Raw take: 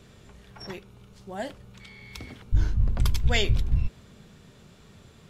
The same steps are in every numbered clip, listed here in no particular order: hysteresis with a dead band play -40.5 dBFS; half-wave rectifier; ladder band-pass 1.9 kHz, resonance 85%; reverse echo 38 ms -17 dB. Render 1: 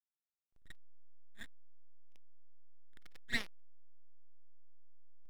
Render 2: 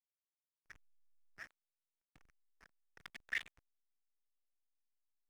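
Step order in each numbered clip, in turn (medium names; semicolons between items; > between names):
ladder band-pass > half-wave rectifier > hysteresis with a dead band > reverse echo; reverse echo > half-wave rectifier > ladder band-pass > hysteresis with a dead band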